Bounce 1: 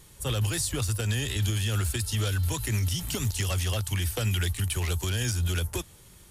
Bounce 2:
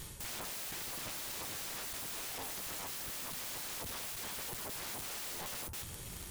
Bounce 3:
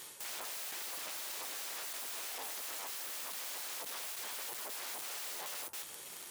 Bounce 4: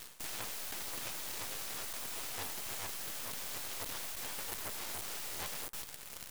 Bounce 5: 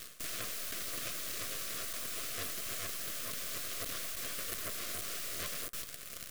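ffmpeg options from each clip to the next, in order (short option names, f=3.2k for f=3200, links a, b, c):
-af "areverse,acompressor=threshold=-35dB:ratio=12,areverse,aeval=exprs='(mod(158*val(0)+1,2)-1)/158':c=same,volume=6.5dB"
-af "highpass=450"
-af "aeval=exprs='0.0266*(cos(1*acos(clip(val(0)/0.0266,-1,1)))-cos(1*PI/2))+0.00841*(cos(3*acos(clip(val(0)/0.0266,-1,1)))-cos(3*PI/2))+0.00133*(cos(8*acos(clip(val(0)/0.0266,-1,1)))-cos(8*PI/2))':c=same,aeval=exprs='0.0355*sin(PI/2*1.41*val(0)/0.0355)':c=same,volume=3dB"
-af "asuperstop=centerf=870:order=12:qfactor=2.7,volume=2dB"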